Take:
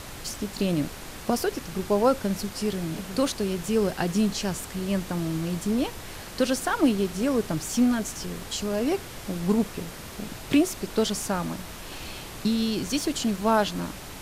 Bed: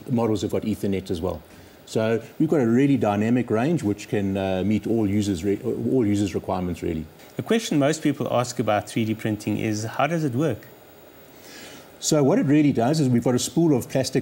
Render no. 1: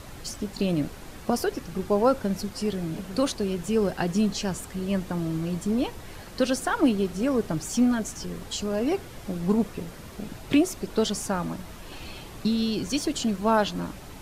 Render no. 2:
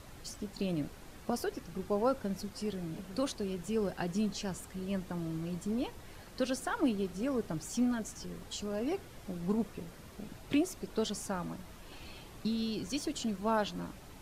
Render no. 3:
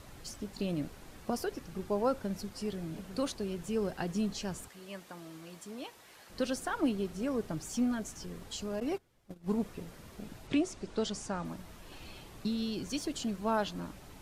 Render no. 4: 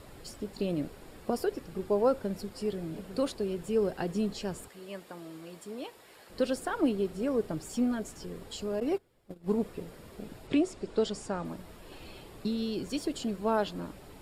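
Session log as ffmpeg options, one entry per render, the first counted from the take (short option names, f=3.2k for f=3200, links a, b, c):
-af "afftdn=nr=7:nf=-40"
-af "volume=-9dB"
-filter_complex "[0:a]asettb=1/sr,asplit=3[a][b][c];[a]atrim=end=4.684[d];[b]atrim=start=4.68:end=6.3,asetpts=PTS-STARTPTS,afade=t=in:d=0.004:c=qsin,afade=t=out:st=1.616:d=0.004:c=qsin,highpass=f=860:p=1[e];[c]atrim=start=6.296[f];[d][e]acrossfade=d=0.004:c1=hsin:c2=qsin[g];[g][f]acrossfade=d=0.004:c1=qsin:c2=hsin,asettb=1/sr,asplit=3[h][i][j];[h]atrim=end=8.804[k];[i]atrim=start=8.8:end=9.58,asetpts=PTS-STARTPTS,afade=t=in:d=0.004:c=qsin,afade=t=out:st=0.776:d=0.004:c=qsin,agate=range=-20dB:threshold=-38dB:ratio=16:release=100:detection=peak[l];[j]atrim=start=9.576[m];[k][l]acrossfade=d=0.004:c1=hsin:c2=qsin[n];[n][m]acrossfade=d=0.004:c1=qsin:c2=hsin,asettb=1/sr,asplit=3[o][p][q];[o]atrim=end=10.474[r];[p]atrim=start=10.47:end=11.45,asetpts=PTS-STARTPTS,afade=t=in:d=0.004:c=qsin,afade=t=out:st=0.976:d=0.004:c=qsin,lowpass=f=8.6k:w=0.5412,lowpass=f=8.6k:w=1.3066[s];[q]atrim=start=11.446[t];[r][s]acrossfade=d=0.004:c1=hsin:c2=qsin[u];[u][t]acrossfade=d=0.004:c1=qsin:c2=hsin"
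-af "equalizer=f=440:w=1.3:g=6.5,bandreject=f=6.1k:w=5.7"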